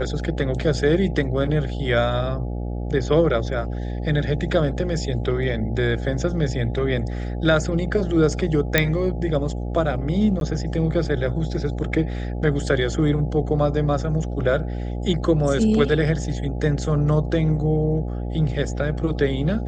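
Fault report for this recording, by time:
buzz 60 Hz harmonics 14 -27 dBFS
8.78 s: pop -1 dBFS
10.40–10.41 s: dropout 12 ms

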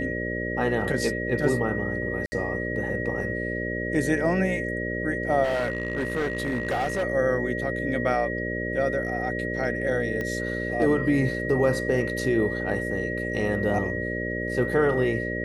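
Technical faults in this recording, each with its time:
buzz 60 Hz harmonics 10 -31 dBFS
whine 1.9 kHz -31 dBFS
2.26–2.32 s: dropout 60 ms
5.43–7.04 s: clipped -22 dBFS
10.21 s: pop -18 dBFS

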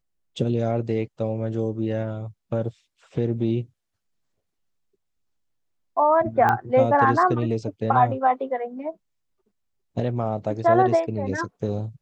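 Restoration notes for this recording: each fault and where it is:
6.49 s: pop -10 dBFS

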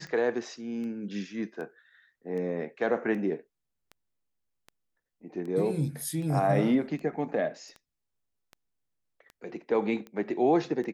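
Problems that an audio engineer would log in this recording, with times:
tick 78 rpm -30 dBFS

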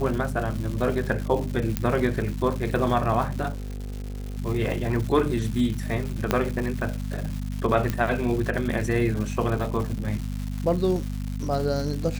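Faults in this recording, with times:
crackle 340 per s -31 dBFS
hum 50 Hz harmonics 5 -30 dBFS
1.77 s: pop -8 dBFS
3.51–4.38 s: clipped -29.5 dBFS
6.31 s: pop -6 dBFS
7.90 s: pop -12 dBFS

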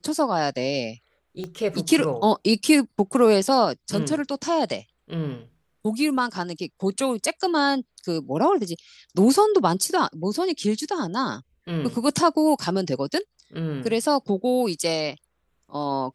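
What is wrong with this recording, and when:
1.44 s: pop -20 dBFS

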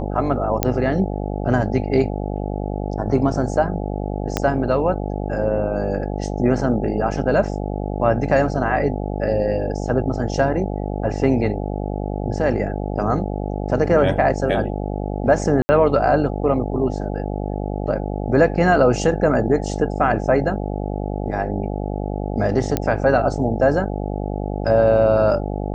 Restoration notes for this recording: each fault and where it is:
buzz 50 Hz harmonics 17 -25 dBFS
0.63 s: pop -1 dBFS
4.37 s: pop -4 dBFS
15.62–15.69 s: dropout 70 ms
22.77 s: pop -6 dBFS

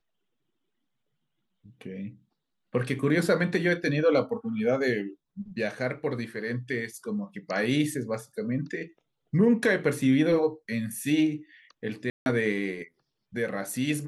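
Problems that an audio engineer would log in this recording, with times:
12.10–12.26 s: dropout 161 ms

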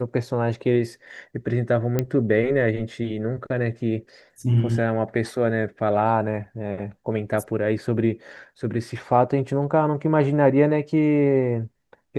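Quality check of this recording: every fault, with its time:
1.99 s: pop -9 dBFS

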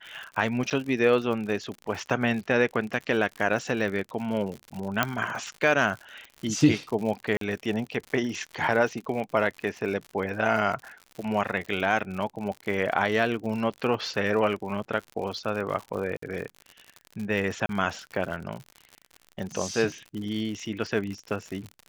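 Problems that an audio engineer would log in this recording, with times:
crackle 80 per s -33 dBFS
0.70–0.71 s: dropout 8.1 ms
5.03 s: pop -7 dBFS
7.37–7.41 s: dropout 43 ms
16.17–16.22 s: dropout 54 ms
17.66–17.69 s: dropout 32 ms

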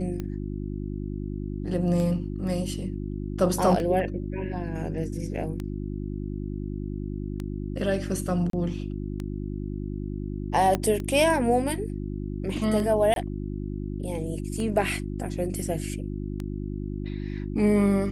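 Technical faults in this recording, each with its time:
hum 50 Hz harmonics 7 -32 dBFS
tick 33 1/3 rpm -20 dBFS
8.50–8.53 s: dropout 33 ms
10.75 s: pop -11 dBFS
13.14–13.16 s: dropout 22 ms

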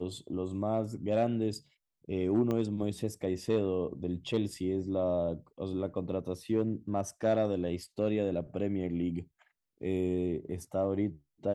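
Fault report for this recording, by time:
2.51 s: pop -21 dBFS

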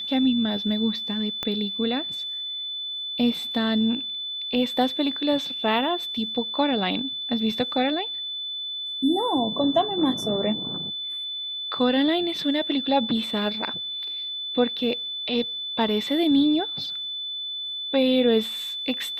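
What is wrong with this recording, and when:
whine 3.5 kHz -29 dBFS
1.43 s: pop -14 dBFS

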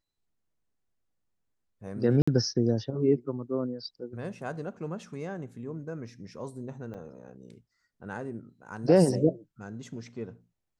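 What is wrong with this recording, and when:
2.22–2.27 s: dropout 55 ms
6.94–6.95 s: dropout 5.3 ms

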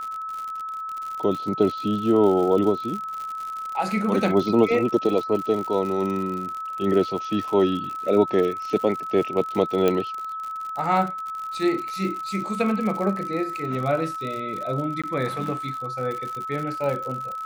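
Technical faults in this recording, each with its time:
crackle 77 per s -29 dBFS
whine 1.3 kHz -29 dBFS
9.88 s: pop -9 dBFS
15.02–15.04 s: dropout 16 ms

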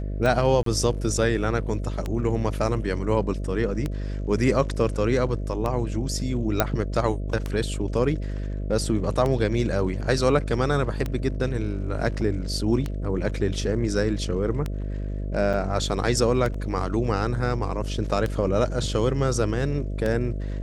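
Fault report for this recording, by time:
buzz 50 Hz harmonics 13 -29 dBFS
tick 33 1/3 rpm
0.63–0.66 s: dropout 33 ms
6.60 s: pop -4 dBFS
15.53–15.54 s: dropout 6.8 ms
16.54 s: dropout 3.9 ms

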